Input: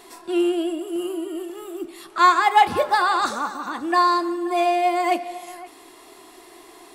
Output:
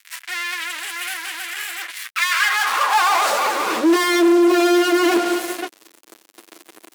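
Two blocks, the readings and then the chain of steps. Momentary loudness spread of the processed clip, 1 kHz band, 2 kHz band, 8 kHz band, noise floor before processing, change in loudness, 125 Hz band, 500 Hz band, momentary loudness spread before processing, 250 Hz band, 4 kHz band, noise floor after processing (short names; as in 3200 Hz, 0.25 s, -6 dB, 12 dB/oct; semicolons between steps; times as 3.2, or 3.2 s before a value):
13 LU, -2.0 dB, +7.0 dB, +12.0 dB, -47 dBFS, +2.5 dB, n/a, +4.0 dB, 17 LU, +7.0 dB, +8.0 dB, -55 dBFS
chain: minimum comb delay 9.1 ms; fuzz box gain 39 dB, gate -41 dBFS; high-pass sweep 1900 Hz -> 310 Hz, 2.28–3.93; gain -5.5 dB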